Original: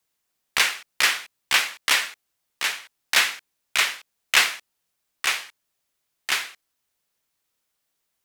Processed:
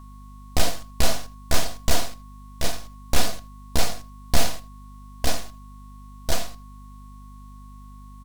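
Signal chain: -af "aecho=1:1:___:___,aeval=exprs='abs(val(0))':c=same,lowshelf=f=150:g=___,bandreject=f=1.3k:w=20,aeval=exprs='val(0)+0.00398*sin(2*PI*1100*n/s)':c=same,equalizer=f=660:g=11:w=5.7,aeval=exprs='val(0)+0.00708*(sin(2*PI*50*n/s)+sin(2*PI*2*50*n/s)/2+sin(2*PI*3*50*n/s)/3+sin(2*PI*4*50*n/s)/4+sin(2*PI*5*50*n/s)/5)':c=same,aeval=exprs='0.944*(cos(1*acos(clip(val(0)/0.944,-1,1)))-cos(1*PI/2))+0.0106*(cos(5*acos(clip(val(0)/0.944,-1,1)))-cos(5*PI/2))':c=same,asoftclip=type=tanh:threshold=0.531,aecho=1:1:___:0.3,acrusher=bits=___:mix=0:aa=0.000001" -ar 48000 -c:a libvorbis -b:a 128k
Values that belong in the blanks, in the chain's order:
80, 0.119, 7, 4.1, 9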